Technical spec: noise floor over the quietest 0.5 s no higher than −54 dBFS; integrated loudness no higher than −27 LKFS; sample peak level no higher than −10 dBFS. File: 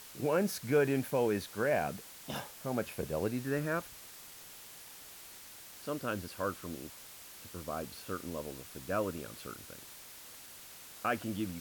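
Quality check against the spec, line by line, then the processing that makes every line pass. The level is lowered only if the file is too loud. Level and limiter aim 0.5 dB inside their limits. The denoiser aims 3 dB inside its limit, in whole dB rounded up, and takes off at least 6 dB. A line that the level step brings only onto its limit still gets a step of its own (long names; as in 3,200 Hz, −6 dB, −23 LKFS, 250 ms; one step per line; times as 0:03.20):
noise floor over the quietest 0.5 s −51 dBFS: out of spec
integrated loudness −35.5 LKFS: in spec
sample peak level −17.5 dBFS: in spec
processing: broadband denoise 6 dB, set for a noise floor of −51 dBFS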